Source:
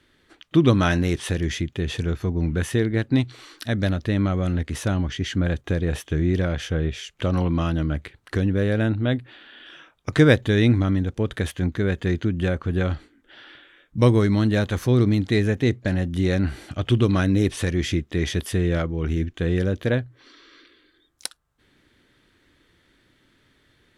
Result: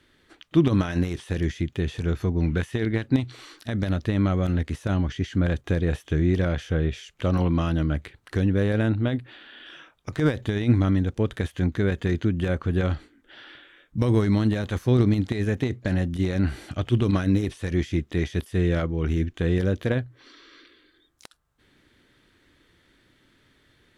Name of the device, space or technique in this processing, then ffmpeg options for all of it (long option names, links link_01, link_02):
de-esser from a sidechain: -filter_complex "[0:a]asettb=1/sr,asplit=3[link_01][link_02][link_03];[link_01]atrim=end=2.384[link_04];[link_02]atrim=start=2.38:end=3.07,asetpts=PTS-STARTPTS,afade=type=in:duration=0.004:curve=qsin,afade=type=out:start_time=0.686:duration=0.004:curve=qsin,equalizer=frequency=2700:width=0.63:gain=4.5[link_05];[link_03]atrim=start=3.066[link_06];[link_04][link_05]acrossfade=duration=0.004:curve1=hsin:curve2=qsin[link_07];[link_07][link_06]acrossfade=duration=0.004:curve1=qsin:curve2=hsin,asplit=2[link_08][link_09];[link_09]highpass=6900,apad=whole_len=1057127[link_10];[link_08][link_10]sidechaincompress=threshold=-49dB:ratio=20:attack=2.3:release=42"